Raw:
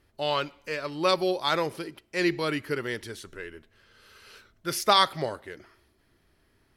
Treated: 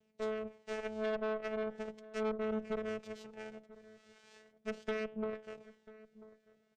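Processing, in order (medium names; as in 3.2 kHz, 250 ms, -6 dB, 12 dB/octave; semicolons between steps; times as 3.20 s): low-pass that closes with the level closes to 540 Hz, closed at -23 dBFS; de-hum 134.6 Hz, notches 7; vocoder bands 4, saw 217 Hz; flange 0.39 Hz, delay 0.3 ms, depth 1.4 ms, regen +58%; ten-band graphic EQ 250 Hz -10 dB, 500 Hz +5 dB, 1 kHz -10 dB; valve stage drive 38 dB, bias 0.6; echo from a far wall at 170 m, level -18 dB; trim +6.5 dB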